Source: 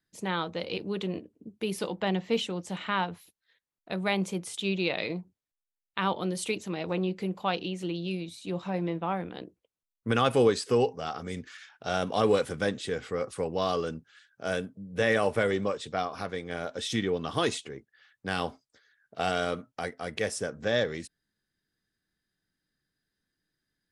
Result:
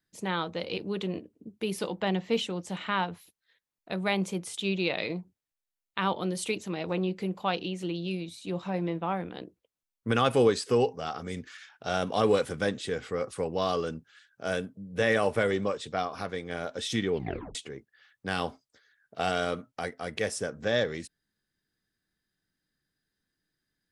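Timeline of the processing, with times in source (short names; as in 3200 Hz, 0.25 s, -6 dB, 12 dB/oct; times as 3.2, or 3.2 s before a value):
17.12 tape stop 0.43 s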